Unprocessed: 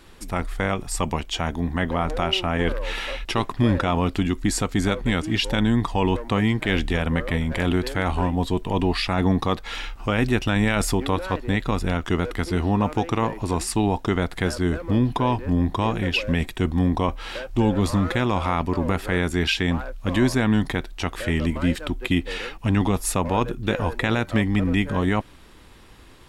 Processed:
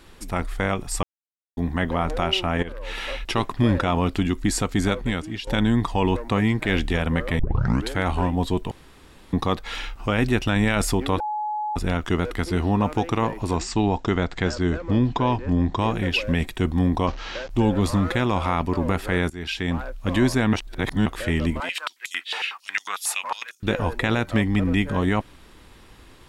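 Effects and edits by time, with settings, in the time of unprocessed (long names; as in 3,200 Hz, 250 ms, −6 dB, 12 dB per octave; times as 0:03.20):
0:01.03–0:01.57: silence
0:02.63–0:03.11: fade in, from −15.5 dB
0:04.92–0:05.47: fade out, to −14 dB
0:06.11–0:06.76: notch filter 3,100 Hz
0:07.39: tape start 0.52 s
0:08.71–0:09.33: fill with room tone
0:11.20–0:11.76: beep over 847 Hz −24 dBFS
0:13.56–0:15.79: Butterworth low-pass 7,800 Hz 72 dB per octave
0:17.07–0:17.50: linear delta modulator 32 kbit/s, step −34.5 dBFS
0:19.30–0:19.85: fade in, from −17.5 dB
0:20.53–0:21.06: reverse
0:21.60–0:23.63: high-pass on a step sequencer 11 Hz 820–6,100 Hz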